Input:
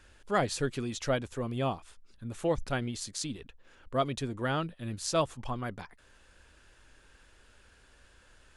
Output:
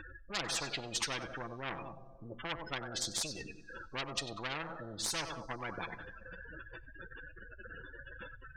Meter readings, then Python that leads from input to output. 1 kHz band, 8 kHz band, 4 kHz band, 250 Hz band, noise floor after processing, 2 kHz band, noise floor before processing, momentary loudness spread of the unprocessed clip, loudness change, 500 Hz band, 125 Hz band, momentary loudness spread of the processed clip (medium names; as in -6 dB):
-7.0 dB, +1.0 dB, +2.0 dB, -11.5 dB, -54 dBFS, 0.0 dB, -61 dBFS, 11 LU, -6.5 dB, -12.0 dB, -12.0 dB, 15 LU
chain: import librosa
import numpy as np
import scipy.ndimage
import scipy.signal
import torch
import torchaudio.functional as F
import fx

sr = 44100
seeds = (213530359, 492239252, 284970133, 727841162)

p1 = np.repeat(scipy.signal.resample_poly(x, 1, 3), 3)[:len(x)]
p2 = scipy.signal.sosfilt(scipy.signal.butter(2, 6500.0, 'lowpass', fs=sr, output='sos'), p1)
p3 = fx.spec_gate(p2, sr, threshold_db=-15, keep='strong')
p4 = p3 + 0.54 * np.pad(p3, (int(6.0 * sr / 1000.0), 0))[:len(p3)]
p5 = fx.rev_double_slope(p4, sr, seeds[0], early_s=0.39, late_s=1.6, knee_db=-18, drr_db=19.5)
p6 = fx.cheby_harmonics(p5, sr, harmonics=(6,), levels_db=(-26,), full_scale_db=-14.0)
p7 = 10.0 ** (-22.5 / 20.0) * np.tanh(p6 / 10.0 ** (-22.5 / 20.0))
p8 = p6 + (p7 * librosa.db_to_amplitude(-6.0))
p9 = fx.echo_feedback(p8, sr, ms=95, feedback_pct=31, wet_db=-23.0)
p10 = fx.spectral_comp(p9, sr, ratio=10.0)
y = p10 * librosa.db_to_amplitude(-2.5)